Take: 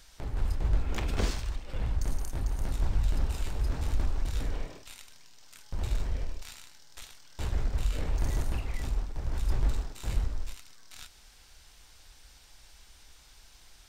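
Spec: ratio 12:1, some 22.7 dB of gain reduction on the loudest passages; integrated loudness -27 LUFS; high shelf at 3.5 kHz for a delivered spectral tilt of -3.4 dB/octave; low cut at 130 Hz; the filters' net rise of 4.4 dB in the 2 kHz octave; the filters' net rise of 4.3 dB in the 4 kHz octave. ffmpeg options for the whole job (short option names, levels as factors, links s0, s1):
-af "highpass=130,equalizer=f=2000:t=o:g=5.5,highshelf=f=3500:g=-8,equalizer=f=4000:t=o:g=9,acompressor=threshold=0.00282:ratio=12,volume=23.7"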